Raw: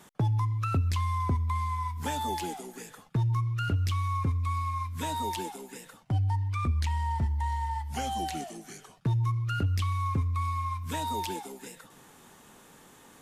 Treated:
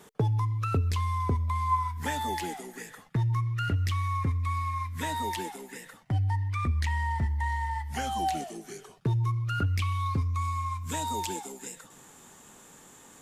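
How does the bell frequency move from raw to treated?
bell +11 dB 0.29 oct
1.31 s 440 Hz
2.04 s 1900 Hz
7.96 s 1900 Hz
8.53 s 400 Hz
9.37 s 400 Hz
9.69 s 1900 Hz
10.42 s 7300 Hz

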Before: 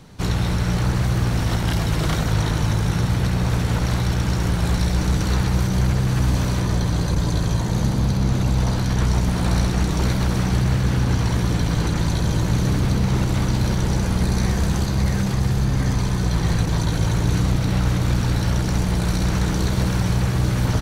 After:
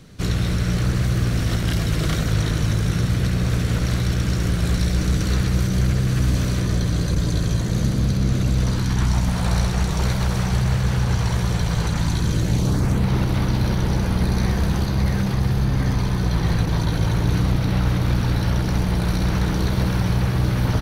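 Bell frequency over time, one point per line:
bell -11 dB 0.52 oct
8.61 s 880 Hz
9.5 s 280 Hz
11.85 s 280 Hz
12.53 s 1200 Hz
13.09 s 7500 Hz

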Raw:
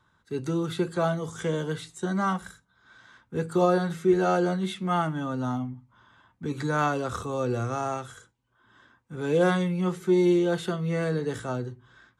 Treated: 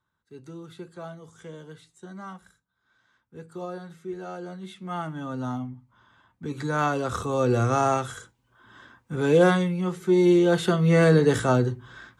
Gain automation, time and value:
4.37 s -13.5 dB
5.37 s -1.5 dB
6.55 s -1.5 dB
7.77 s +7.5 dB
9.14 s +7.5 dB
9.87 s -1 dB
11.04 s +10 dB

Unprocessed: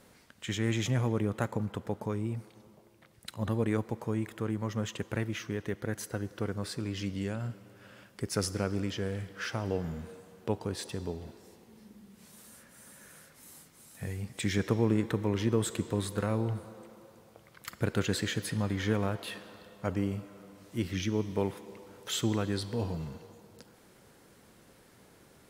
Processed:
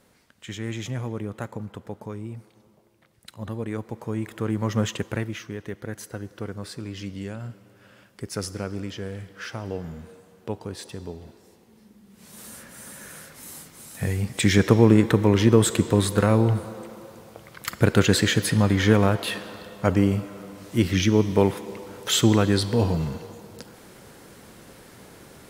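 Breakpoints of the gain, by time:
3.69 s -1.5 dB
4.81 s +10 dB
5.47 s +0.5 dB
12.03 s +0.5 dB
12.44 s +11.5 dB

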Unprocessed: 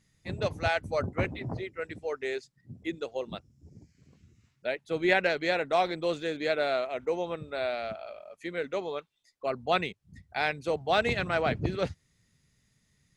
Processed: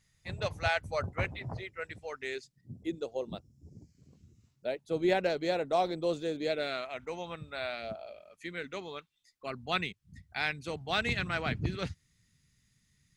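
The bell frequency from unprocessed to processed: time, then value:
bell -11 dB 1.6 oct
2 s 290 Hz
2.74 s 1900 Hz
6.4 s 1900 Hz
6.86 s 430 Hz
7.74 s 430 Hz
7.92 s 2200 Hz
8.38 s 570 Hz

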